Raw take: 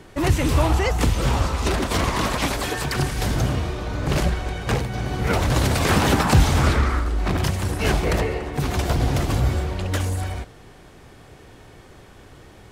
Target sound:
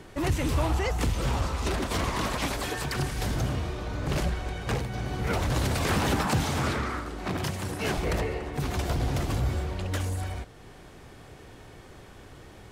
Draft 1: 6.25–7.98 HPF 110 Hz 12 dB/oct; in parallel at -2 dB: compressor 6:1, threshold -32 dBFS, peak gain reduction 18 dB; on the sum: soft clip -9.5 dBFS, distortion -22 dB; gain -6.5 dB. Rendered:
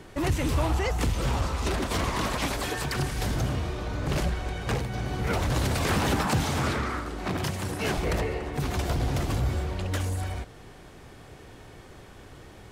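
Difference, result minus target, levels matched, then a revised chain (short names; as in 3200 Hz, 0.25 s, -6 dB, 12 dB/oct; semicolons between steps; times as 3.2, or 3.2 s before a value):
compressor: peak gain reduction -8.5 dB
6.25–7.98 HPF 110 Hz 12 dB/oct; in parallel at -2 dB: compressor 6:1, threshold -42 dBFS, peak gain reduction 26.5 dB; on the sum: soft clip -9.5 dBFS, distortion -22 dB; gain -6.5 dB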